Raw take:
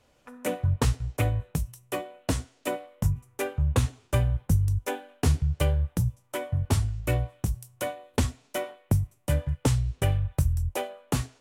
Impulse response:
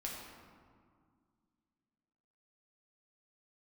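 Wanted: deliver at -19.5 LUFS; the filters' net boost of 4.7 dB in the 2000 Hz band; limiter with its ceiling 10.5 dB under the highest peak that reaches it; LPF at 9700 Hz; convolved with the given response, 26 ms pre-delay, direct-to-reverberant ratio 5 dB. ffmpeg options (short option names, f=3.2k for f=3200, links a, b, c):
-filter_complex "[0:a]lowpass=9.7k,equalizer=f=2k:t=o:g=6,alimiter=limit=-20.5dB:level=0:latency=1,asplit=2[a][b];[1:a]atrim=start_sample=2205,adelay=26[c];[b][c]afir=irnorm=-1:irlink=0,volume=-5dB[d];[a][d]amix=inputs=2:normalize=0,volume=11dB"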